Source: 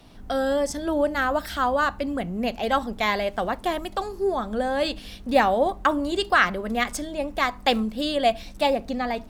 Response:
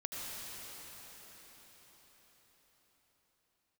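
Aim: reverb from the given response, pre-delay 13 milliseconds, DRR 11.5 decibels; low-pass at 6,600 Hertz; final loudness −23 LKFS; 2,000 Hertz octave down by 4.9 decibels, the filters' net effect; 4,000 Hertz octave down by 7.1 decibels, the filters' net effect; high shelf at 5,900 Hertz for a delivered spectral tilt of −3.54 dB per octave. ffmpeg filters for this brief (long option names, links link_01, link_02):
-filter_complex "[0:a]lowpass=6600,equalizer=frequency=2000:width_type=o:gain=-5,equalizer=frequency=4000:width_type=o:gain=-5.5,highshelf=frequency=5900:gain=-4.5,asplit=2[link_01][link_02];[1:a]atrim=start_sample=2205,adelay=13[link_03];[link_02][link_03]afir=irnorm=-1:irlink=0,volume=-13.5dB[link_04];[link_01][link_04]amix=inputs=2:normalize=0,volume=2.5dB"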